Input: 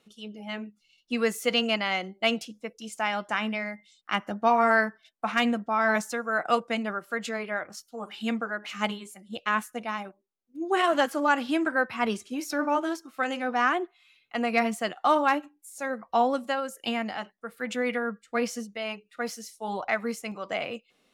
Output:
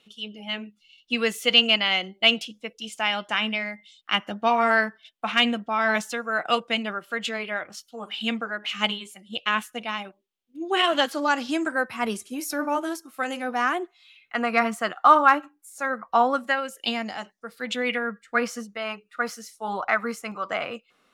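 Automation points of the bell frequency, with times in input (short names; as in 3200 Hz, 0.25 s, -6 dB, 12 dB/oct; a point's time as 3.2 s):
bell +11.5 dB 0.84 oct
10.91 s 3100 Hz
11.98 s 11000 Hz
13.75 s 11000 Hz
14.4 s 1300 Hz
16.35 s 1300 Hz
17.19 s 7700 Hz
18.47 s 1300 Hz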